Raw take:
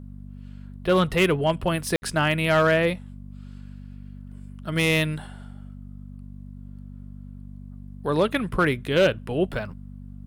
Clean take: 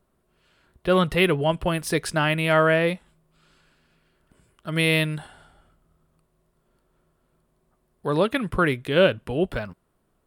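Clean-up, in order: clip repair -13 dBFS; de-hum 48.7 Hz, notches 5; room tone fill 1.96–2.02

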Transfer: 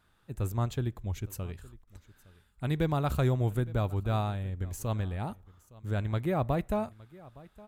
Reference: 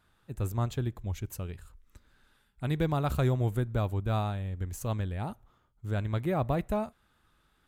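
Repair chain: interpolate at 1.84, 32 ms; inverse comb 0.864 s -21.5 dB

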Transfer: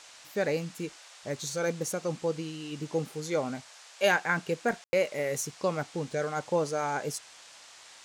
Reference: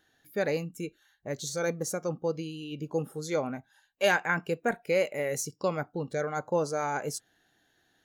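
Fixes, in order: room tone fill 4.84–4.93; noise print and reduce 18 dB

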